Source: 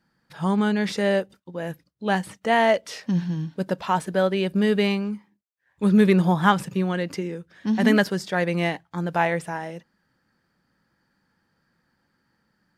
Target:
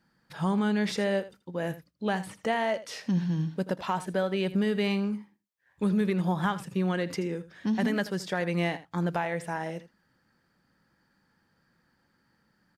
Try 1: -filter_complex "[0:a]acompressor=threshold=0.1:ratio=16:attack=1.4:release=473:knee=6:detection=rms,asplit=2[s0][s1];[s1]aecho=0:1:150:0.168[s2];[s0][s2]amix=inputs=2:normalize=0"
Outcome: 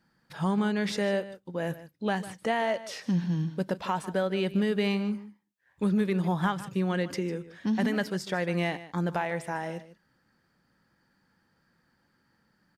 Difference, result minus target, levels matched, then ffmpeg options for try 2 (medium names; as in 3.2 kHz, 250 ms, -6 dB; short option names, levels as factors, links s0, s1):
echo 69 ms late
-filter_complex "[0:a]acompressor=threshold=0.1:ratio=16:attack=1.4:release=473:knee=6:detection=rms,asplit=2[s0][s1];[s1]aecho=0:1:81:0.168[s2];[s0][s2]amix=inputs=2:normalize=0"